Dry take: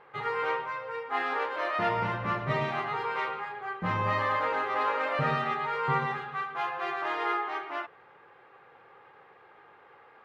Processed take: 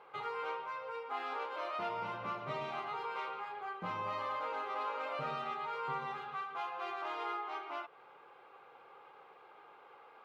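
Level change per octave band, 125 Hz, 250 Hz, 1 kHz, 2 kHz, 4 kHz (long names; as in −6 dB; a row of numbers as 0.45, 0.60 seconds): −17.5, −13.0, −8.5, −12.5, −7.5 decibels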